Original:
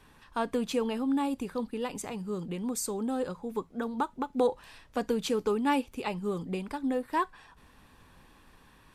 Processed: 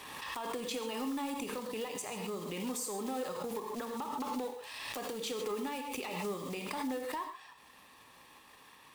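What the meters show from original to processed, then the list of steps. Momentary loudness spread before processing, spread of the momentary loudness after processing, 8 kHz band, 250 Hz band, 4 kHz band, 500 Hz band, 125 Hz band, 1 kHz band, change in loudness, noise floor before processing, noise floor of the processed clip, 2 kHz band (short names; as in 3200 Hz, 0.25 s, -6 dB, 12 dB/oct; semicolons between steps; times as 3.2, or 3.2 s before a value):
7 LU, 20 LU, -1.5 dB, -8.5 dB, 0.0 dB, -7.0 dB, -8.0 dB, -5.5 dB, -6.5 dB, -59 dBFS, -59 dBFS, -2.5 dB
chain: block floating point 5-bit; HPF 770 Hz 6 dB/oct; notch 1500 Hz, Q 5.4; compressor, threshold -34 dBFS, peak gain reduction 8.5 dB; transient shaper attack +9 dB, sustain -3 dB; limiter -31 dBFS, peak gain reduction 16 dB; soft clip -34 dBFS, distortion -19 dB; non-linear reverb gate 0.17 s flat, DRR 5 dB; backwards sustainer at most 30 dB/s; gain +3 dB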